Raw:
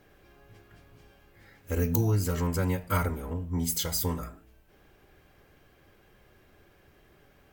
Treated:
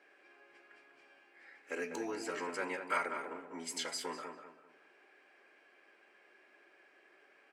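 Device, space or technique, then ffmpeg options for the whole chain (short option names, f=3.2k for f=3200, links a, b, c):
phone speaker on a table: -filter_complex "[0:a]highpass=f=340:w=0.5412,highpass=f=340:w=1.3066,equalizer=f=480:t=q:w=4:g=-4,equalizer=f=1.7k:t=q:w=4:g=6,equalizer=f=2.4k:t=q:w=4:g=8,equalizer=f=3.6k:t=q:w=4:g=-5,equalizer=f=6.4k:t=q:w=4:g=-7,lowpass=f=8.2k:w=0.5412,lowpass=f=8.2k:w=1.3066,asplit=2[a][b];[b]adelay=196,lowpass=f=2.1k:p=1,volume=-6.5dB,asplit=2[c][d];[d]adelay=196,lowpass=f=2.1k:p=1,volume=0.35,asplit=2[e][f];[f]adelay=196,lowpass=f=2.1k:p=1,volume=0.35,asplit=2[g][h];[h]adelay=196,lowpass=f=2.1k:p=1,volume=0.35[i];[a][c][e][g][i]amix=inputs=5:normalize=0,volume=-4.5dB"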